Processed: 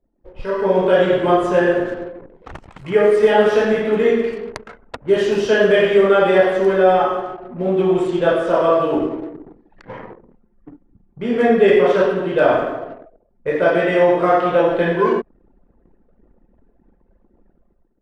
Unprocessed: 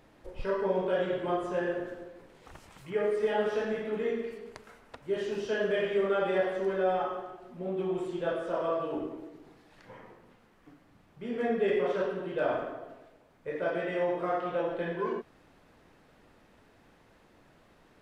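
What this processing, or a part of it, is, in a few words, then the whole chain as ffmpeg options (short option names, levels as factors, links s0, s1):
voice memo with heavy noise removal: -af "anlmdn=0.00251,dynaudnorm=f=180:g=7:m=5.62,volume=1.19"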